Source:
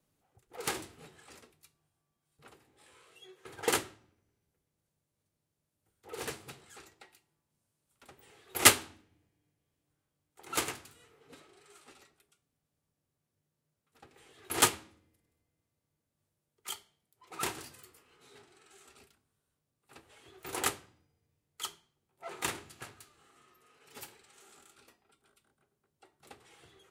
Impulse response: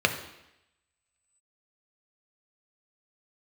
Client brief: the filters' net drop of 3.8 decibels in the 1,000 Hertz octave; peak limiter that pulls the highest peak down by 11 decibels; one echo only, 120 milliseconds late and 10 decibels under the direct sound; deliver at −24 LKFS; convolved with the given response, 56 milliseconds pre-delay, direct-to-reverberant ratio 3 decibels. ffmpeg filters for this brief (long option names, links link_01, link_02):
-filter_complex "[0:a]equalizer=frequency=1000:width_type=o:gain=-5,alimiter=limit=-15dB:level=0:latency=1,aecho=1:1:120:0.316,asplit=2[link_01][link_02];[1:a]atrim=start_sample=2205,adelay=56[link_03];[link_02][link_03]afir=irnorm=-1:irlink=0,volume=-17.5dB[link_04];[link_01][link_04]amix=inputs=2:normalize=0,volume=12dB"